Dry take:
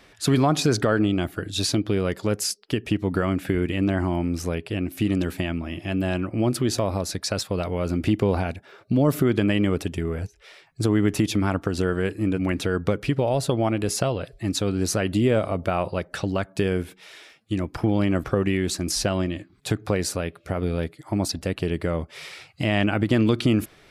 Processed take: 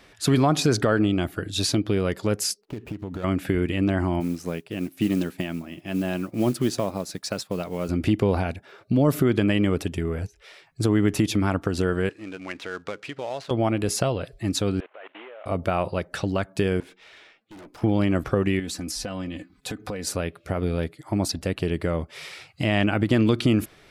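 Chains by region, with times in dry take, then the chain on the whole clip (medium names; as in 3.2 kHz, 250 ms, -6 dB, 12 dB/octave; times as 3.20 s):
2.61–3.24 s: median filter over 25 samples + compression 5:1, threshold -29 dBFS
4.20–7.89 s: resonant low shelf 110 Hz -8.5 dB, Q 1.5 + modulation noise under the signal 25 dB + upward expansion, over -43 dBFS
12.09–13.51 s: dead-time distortion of 0.066 ms + high-pass 1.3 kHz 6 dB/octave + distance through air 94 m
14.80–15.46 s: CVSD coder 16 kbps + high-pass 550 Hz 24 dB/octave + level held to a coarse grid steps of 21 dB
16.80–17.82 s: level-controlled noise filter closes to 2.6 kHz, open at -26.5 dBFS + high-pass 270 Hz + valve stage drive 42 dB, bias 0.45
18.59–20.07 s: comb 4 ms, depth 62% + compression 4:1, threshold -29 dBFS
whole clip: none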